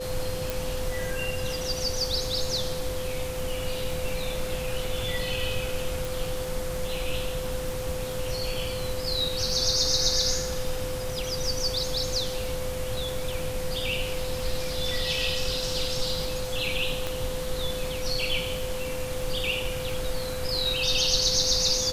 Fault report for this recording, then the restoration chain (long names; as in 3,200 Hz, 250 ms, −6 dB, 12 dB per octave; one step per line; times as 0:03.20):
surface crackle 45 per second −35 dBFS
whistle 510 Hz −32 dBFS
0:00.50: click
0:06.05: click
0:17.07: click −15 dBFS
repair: click removal
notch filter 510 Hz, Q 30